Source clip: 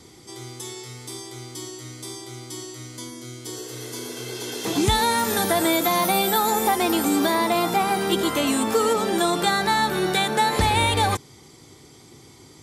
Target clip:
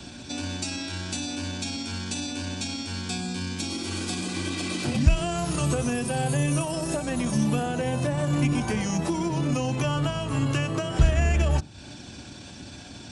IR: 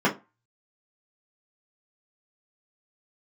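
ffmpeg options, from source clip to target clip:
-filter_complex "[0:a]acrossover=split=190[link_01][link_02];[link_02]acompressor=threshold=-35dB:ratio=6[link_03];[link_01][link_03]amix=inputs=2:normalize=0,atempo=1.3,asplit=2[link_04][link_05];[1:a]atrim=start_sample=2205[link_06];[link_05][link_06]afir=irnorm=-1:irlink=0,volume=-28dB[link_07];[link_04][link_07]amix=inputs=2:normalize=0,asetrate=32667,aresample=44100,volume=6.5dB"

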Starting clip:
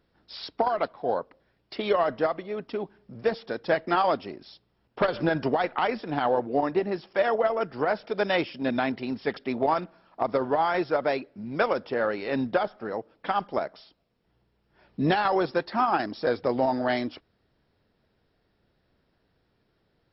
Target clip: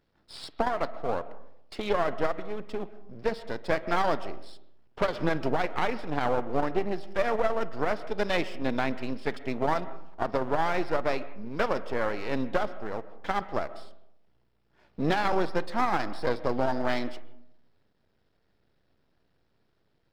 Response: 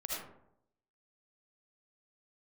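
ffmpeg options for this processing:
-filter_complex "[0:a]aeval=exprs='if(lt(val(0),0),0.251*val(0),val(0))':channel_layout=same,asplit=2[link_01][link_02];[link_02]lowpass=frequency=3500:width=0.5412,lowpass=frequency=3500:width=1.3066[link_03];[1:a]atrim=start_sample=2205,adelay=53[link_04];[link_03][link_04]afir=irnorm=-1:irlink=0,volume=-16.5dB[link_05];[link_01][link_05]amix=inputs=2:normalize=0"

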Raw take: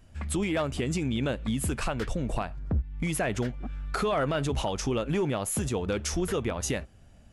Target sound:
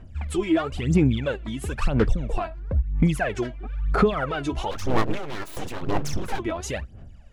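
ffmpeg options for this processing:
ffmpeg -i in.wav -filter_complex "[0:a]aphaser=in_gain=1:out_gain=1:delay=3.1:decay=0.76:speed=1:type=sinusoidal,aemphasis=mode=reproduction:type=50kf,asplit=3[link_01][link_02][link_03];[link_01]afade=type=out:start_time=4.7:duration=0.02[link_04];[link_02]aeval=exprs='abs(val(0))':channel_layout=same,afade=type=in:start_time=4.7:duration=0.02,afade=type=out:start_time=6.38:duration=0.02[link_05];[link_03]afade=type=in:start_time=6.38:duration=0.02[link_06];[link_04][link_05][link_06]amix=inputs=3:normalize=0" out.wav

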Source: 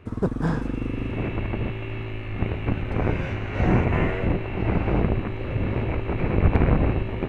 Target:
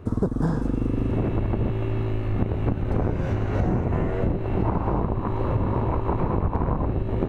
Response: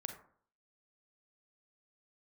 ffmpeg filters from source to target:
-filter_complex "[0:a]asettb=1/sr,asplit=3[link_01][link_02][link_03];[link_01]atrim=end=4.634[link_04];[link_02]atrim=start=4.63:end=6.86,asetpts=PTS-STARTPTS,afade=type=in:duration=0.004:curve=qsin,afade=type=out:start_time=2.226:duration=0.004:curve=qsin,equalizer=frequency=1000:width=2.5:gain=12.5[link_05];[link_03]atrim=start=6.856[link_06];[link_04][link_05]acrossfade=duration=0.004:curve1=hsin:curve2=qsin[link_07];[link_07][link_06]acrossfade=duration=0.004:curve1=qsin:curve2=hsin,acompressor=threshold=-26dB:ratio=12,equalizer=frequency=2400:width=1.2:gain=-14.5,volume=7.5dB"

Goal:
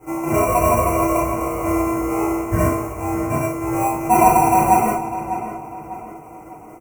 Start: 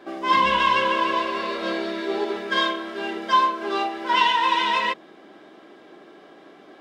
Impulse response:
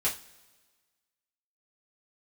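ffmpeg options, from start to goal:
-filter_complex "[0:a]aecho=1:1:6.3:0.87,acrusher=samples=26:mix=1:aa=0.000001,asuperstop=centerf=3800:order=4:qfactor=0.76,asplit=2[link_01][link_02];[link_02]adelay=599,lowpass=frequency=3400:poles=1,volume=-11dB,asplit=2[link_03][link_04];[link_04]adelay=599,lowpass=frequency=3400:poles=1,volume=0.43,asplit=2[link_05][link_06];[link_06]adelay=599,lowpass=frequency=3400:poles=1,volume=0.43,asplit=2[link_07][link_08];[link_08]adelay=599,lowpass=frequency=3400:poles=1,volume=0.43[link_09];[link_01][link_03][link_05][link_07][link_09]amix=inputs=5:normalize=0[link_10];[1:a]atrim=start_sample=2205[link_11];[link_10][link_11]afir=irnorm=-1:irlink=0,volume=-4.5dB"

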